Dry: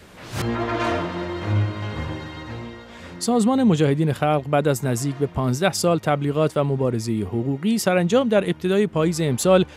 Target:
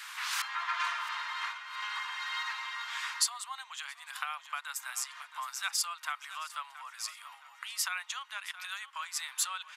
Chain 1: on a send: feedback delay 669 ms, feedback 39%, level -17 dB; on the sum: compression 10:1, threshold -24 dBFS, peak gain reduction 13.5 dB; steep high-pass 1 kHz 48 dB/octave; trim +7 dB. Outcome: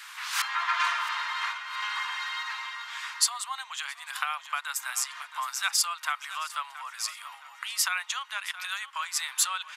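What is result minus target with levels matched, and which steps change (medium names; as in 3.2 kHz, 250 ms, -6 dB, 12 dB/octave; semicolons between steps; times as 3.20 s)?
compression: peak gain reduction -6.5 dB
change: compression 10:1, threshold -31 dBFS, peak gain reduction 20 dB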